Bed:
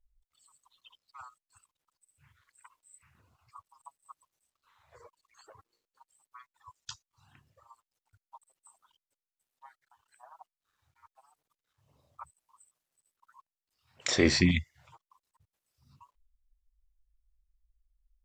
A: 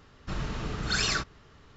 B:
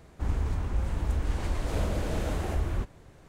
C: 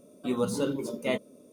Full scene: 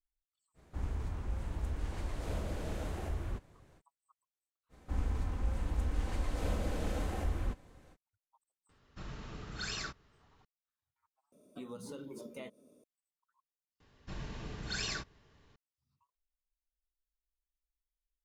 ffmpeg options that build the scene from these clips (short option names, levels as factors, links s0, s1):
-filter_complex "[2:a]asplit=2[s0][s1];[1:a]asplit=2[s2][s3];[0:a]volume=0.1[s4];[s1]aecho=1:1:3.9:0.34[s5];[3:a]acompressor=threshold=0.0251:ratio=6:attack=6.5:release=166:knee=1:detection=rms[s6];[s3]bandreject=f=1300:w=5.9[s7];[s4]asplit=3[s8][s9][s10];[s8]atrim=end=11.324[s11];[s6]atrim=end=1.52,asetpts=PTS-STARTPTS,volume=0.335[s12];[s9]atrim=start=12.836:end=13.804[s13];[s7]atrim=end=1.76,asetpts=PTS-STARTPTS,volume=0.335[s14];[s10]atrim=start=15.556[s15];[s0]atrim=end=3.28,asetpts=PTS-STARTPTS,volume=0.376,afade=t=in:d=0.05,afade=t=out:st=3.23:d=0.05,adelay=540[s16];[s5]atrim=end=3.28,asetpts=PTS-STARTPTS,volume=0.501,afade=t=in:d=0.05,afade=t=out:st=3.23:d=0.05,adelay=206829S[s17];[s2]atrim=end=1.76,asetpts=PTS-STARTPTS,volume=0.251,afade=t=in:d=0.004:c=hsin,afade=t=out:st=1.756:d=0.004:c=hsin,adelay=8690[s18];[s11][s12]acrossfade=d=0.004:c1=hsin:c2=hsin[s19];[s19][s13]acrossfade=d=0.004:c1=hsin:c2=hsin[s20];[s20][s14]acrossfade=d=0.004:c1=hsin:c2=hsin[s21];[s21][s15]acrossfade=d=0.004:c1=hsin:c2=hsin[s22];[s22][s16][s17][s18]amix=inputs=4:normalize=0"